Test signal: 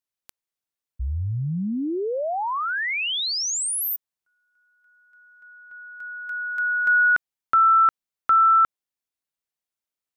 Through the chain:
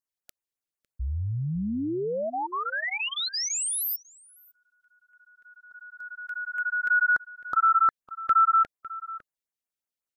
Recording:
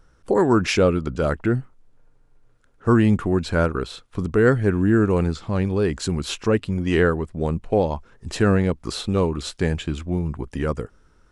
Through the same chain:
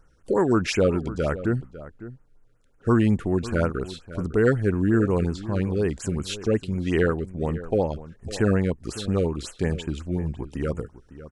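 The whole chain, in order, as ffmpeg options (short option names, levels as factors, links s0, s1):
-filter_complex "[0:a]asplit=2[s0][s1];[s1]adelay=553.9,volume=0.178,highshelf=f=4000:g=-12.5[s2];[s0][s2]amix=inputs=2:normalize=0,afftfilt=real='re*(1-between(b*sr/1024,810*pow(4600/810,0.5+0.5*sin(2*PI*5.5*pts/sr))/1.41,810*pow(4600/810,0.5+0.5*sin(2*PI*5.5*pts/sr))*1.41))':imag='im*(1-between(b*sr/1024,810*pow(4600/810,0.5+0.5*sin(2*PI*5.5*pts/sr))/1.41,810*pow(4600/810,0.5+0.5*sin(2*PI*5.5*pts/sr))*1.41))':win_size=1024:overlap=0.75,volume=0.708"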